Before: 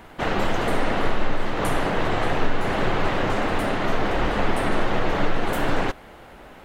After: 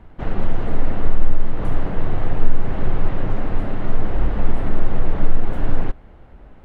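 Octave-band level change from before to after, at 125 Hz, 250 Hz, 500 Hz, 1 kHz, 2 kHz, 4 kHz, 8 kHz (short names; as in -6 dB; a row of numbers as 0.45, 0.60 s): +4.5 dB, -2.0 dB, -6.5 dB, -8.5 dB, -11.0 dB, -14.5 dB, under -20 dB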